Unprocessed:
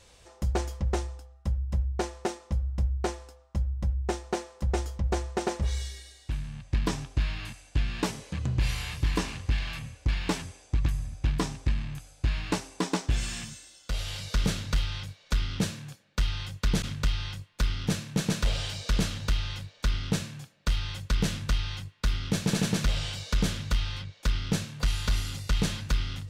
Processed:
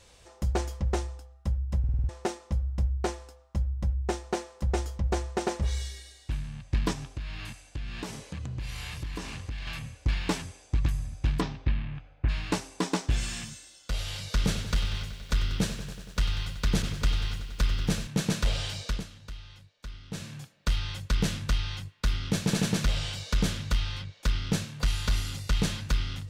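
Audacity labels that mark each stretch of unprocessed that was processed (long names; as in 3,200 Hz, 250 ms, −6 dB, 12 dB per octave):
1.790000	1.790000	stutter in place 0.05 s, 6 plays
6.920000	9.670000	downward compressor 4 to 1, threshold −33 dBFS
11.400000	12.280000	low-pass filter 4,800 Hz → 2,300 Hz 24 dB per octave
14.390000	18.070000	feedback echo at a low word length 94 ms, feedback 80%, word length 9 bits, level −12.5 dB
18.810000	20.330000	duck −14.5 dB, fades 0.23 s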